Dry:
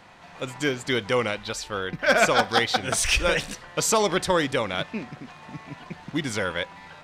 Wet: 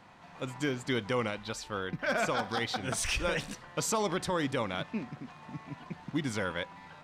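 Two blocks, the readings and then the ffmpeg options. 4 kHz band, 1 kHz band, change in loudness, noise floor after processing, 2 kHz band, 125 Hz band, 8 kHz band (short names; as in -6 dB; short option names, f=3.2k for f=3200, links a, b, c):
-10.0 dB, -8.5 dB, -9.0 dB, -53 dBFS, -10.0 dB, -4.0 dB, -9.5 dB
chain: -af "equalizer=f=125:t=o:w=1:g=5,equalizer=f=250:t=o:w=1:g=5,equalizer=f=1k:t=o:w=1:g=4,alimiter=limit=-12.5dB:level=0:latency=1:release=59,volume=-8.5dB"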